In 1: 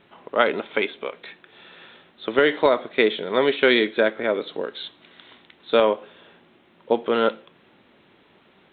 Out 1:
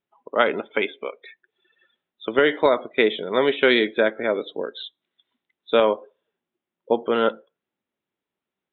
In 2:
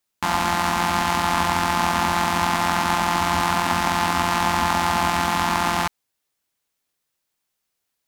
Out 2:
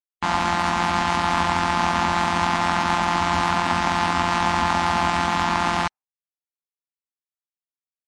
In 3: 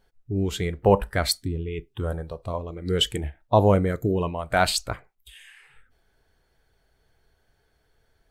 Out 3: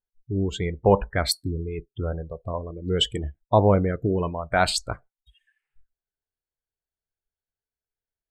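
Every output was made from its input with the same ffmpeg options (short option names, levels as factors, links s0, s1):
-af "afftdn=nr=31:nf=-36"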